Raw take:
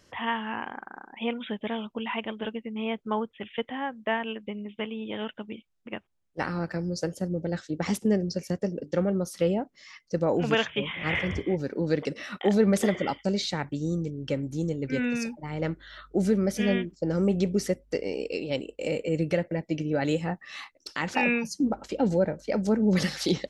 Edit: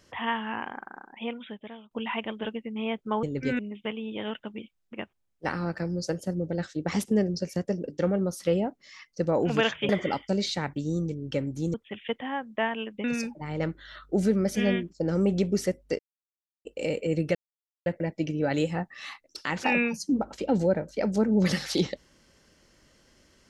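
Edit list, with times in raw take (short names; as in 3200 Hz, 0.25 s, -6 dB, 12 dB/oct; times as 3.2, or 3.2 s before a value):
0.85–1.91 fade out, to -20.5 dB
3.23–4.53 swap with 14.7–15.06
10.83–12.85 cut
18.01–18.67 mute
19.37 insert silence 0.51 s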